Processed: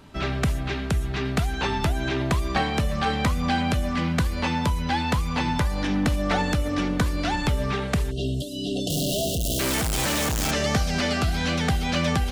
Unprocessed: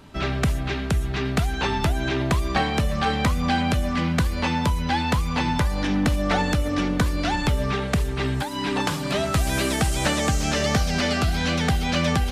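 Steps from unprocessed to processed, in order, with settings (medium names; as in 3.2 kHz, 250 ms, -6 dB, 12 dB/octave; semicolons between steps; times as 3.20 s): 8.90–10.51 s: one-bit comparator; 8.11–9.60 s: spectral selection erased 750–2700 Hz; trim -1.5 dB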